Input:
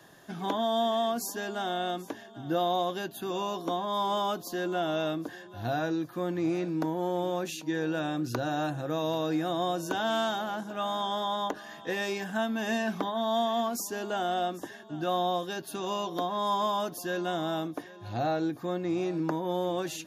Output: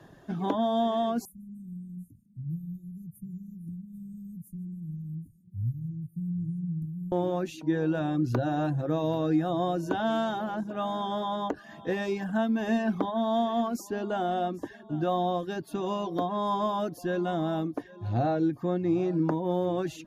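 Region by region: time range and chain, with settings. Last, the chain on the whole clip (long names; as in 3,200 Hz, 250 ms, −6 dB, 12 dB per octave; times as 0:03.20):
0:01.25–0:07.12: Chebyshev band-stop filter 180–8,900 Hz, order 4 + repeating echo 148 ms, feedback 39%, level −17 dB
whole clip: spectral tilt −3 dB per octave; reverb reduction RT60 0.51 s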